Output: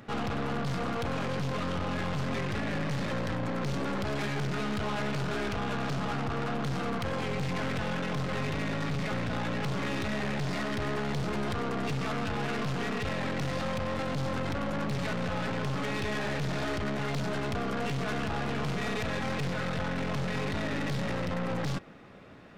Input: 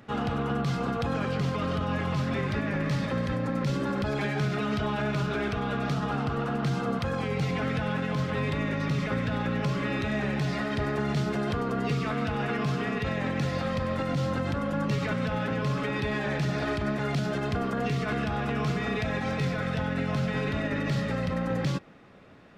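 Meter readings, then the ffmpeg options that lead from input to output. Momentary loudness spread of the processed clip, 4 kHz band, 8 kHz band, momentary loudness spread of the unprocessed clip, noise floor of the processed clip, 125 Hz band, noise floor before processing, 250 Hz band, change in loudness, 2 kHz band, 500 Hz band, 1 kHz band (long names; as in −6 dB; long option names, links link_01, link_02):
1 LU, 0.0 dB, +2.0 dB, 1 LU, −33 dBFS, −4.5 dB, −32 dBFS, −4.0 dB, −3.0 dB, −2.0 dB, −3.0 dB, −2.0 dB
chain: -af "acontrast=32,aeval=exprs='(tanh(31.6*val(0)+0.65)-tanh(0.65))/31.6':channel_layout=same"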